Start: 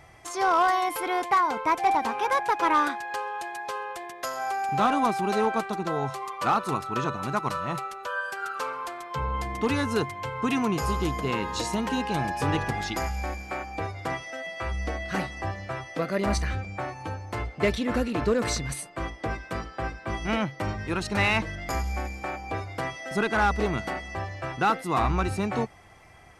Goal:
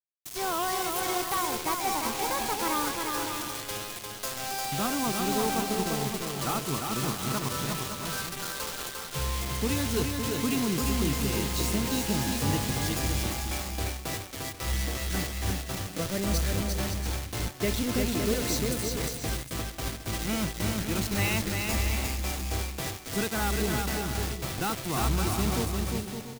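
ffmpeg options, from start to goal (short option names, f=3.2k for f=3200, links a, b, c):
-af "acrusher=bits=4:mix=0:aa=0.000001,equalizer=f=1.1k:t=o:w=2.9:g=-9.5,aecho=1:1:350|560|686|761.6|807:0.631|0.398|0.251|0.158|0.1"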